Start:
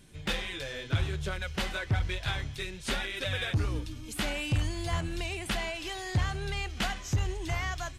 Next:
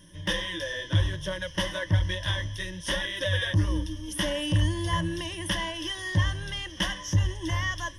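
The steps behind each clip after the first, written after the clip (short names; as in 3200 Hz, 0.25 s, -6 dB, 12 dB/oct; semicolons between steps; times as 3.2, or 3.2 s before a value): ripple EQ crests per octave 1.2, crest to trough 18 dB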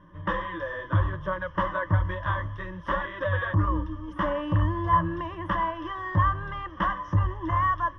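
synth low-pass 1200 Hz, resonance Q 9.3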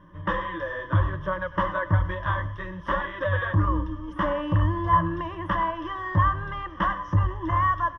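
echo 0.102 s -17 dB; gain +1.5 dB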